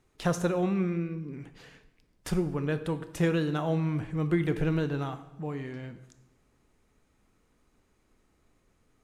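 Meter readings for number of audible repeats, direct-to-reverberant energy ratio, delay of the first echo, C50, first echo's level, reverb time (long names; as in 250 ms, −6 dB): no echo audible, 11.0 dB, no echo audible, 13.0 dB, no echo audible, 0.90 s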